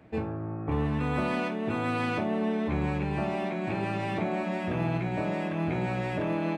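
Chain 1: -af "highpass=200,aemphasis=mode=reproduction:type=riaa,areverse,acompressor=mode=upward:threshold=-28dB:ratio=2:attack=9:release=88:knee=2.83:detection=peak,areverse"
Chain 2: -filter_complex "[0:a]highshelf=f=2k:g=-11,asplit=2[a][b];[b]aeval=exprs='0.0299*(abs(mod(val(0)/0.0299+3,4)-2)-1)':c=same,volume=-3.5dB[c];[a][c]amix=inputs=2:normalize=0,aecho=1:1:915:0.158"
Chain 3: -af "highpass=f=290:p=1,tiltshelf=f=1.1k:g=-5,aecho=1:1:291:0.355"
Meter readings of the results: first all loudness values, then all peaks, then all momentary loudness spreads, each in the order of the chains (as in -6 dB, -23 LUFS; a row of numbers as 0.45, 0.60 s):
-27.0, -29.0, -33.5 LUFS; -13.5, -16.0, -19.0 dBFS; 3, 1, 5 LU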